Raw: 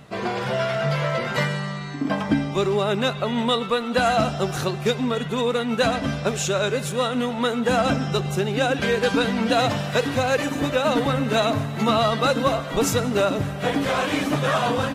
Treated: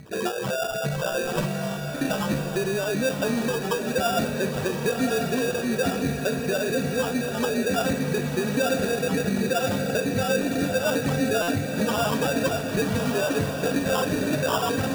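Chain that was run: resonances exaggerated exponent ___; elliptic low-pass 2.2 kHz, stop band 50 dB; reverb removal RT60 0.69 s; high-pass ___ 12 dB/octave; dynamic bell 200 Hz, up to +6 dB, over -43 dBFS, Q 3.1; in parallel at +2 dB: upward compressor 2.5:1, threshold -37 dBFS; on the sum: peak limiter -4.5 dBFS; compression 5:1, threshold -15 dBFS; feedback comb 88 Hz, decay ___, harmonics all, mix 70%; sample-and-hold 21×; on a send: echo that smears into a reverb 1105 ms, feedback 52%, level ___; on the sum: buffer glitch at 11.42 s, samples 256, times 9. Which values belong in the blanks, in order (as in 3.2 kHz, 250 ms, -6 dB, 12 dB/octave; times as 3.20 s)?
3, 41 Hz, 0.37 s, -5 dB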